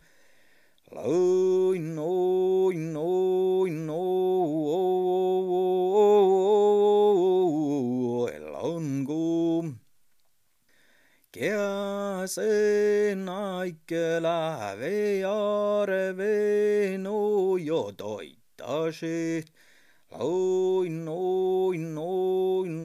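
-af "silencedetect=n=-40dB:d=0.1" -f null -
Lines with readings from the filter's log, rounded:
silence_start: 0.00
silence_end: 0.92 | silence_duration: 0.92
silence_start: 9.77
silence_end: 11.34 | silence_duration: 1.57
silence_start: 13.74
silence_end: 13.89 | silence_duration: 0.15
silence_start: 18.31
silence_end: 18.59 | silence_duration: 0.28
silence_start: 19.47
silence_end: 20.12 | silence_duration: 0.65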